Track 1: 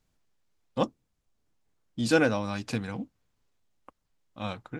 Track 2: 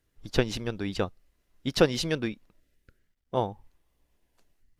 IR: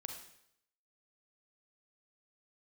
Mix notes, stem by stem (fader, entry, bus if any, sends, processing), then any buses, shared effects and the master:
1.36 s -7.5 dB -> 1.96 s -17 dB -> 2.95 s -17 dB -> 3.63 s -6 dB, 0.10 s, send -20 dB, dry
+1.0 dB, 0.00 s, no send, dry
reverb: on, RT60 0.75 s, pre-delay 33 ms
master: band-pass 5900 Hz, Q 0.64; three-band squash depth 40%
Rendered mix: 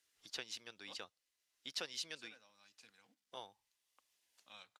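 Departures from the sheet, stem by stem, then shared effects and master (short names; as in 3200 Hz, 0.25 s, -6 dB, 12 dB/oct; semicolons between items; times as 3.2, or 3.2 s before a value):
stem 1 -7.5 dB -> -18.0 dB; stem 2 +1.0 dB -> -7.0 dB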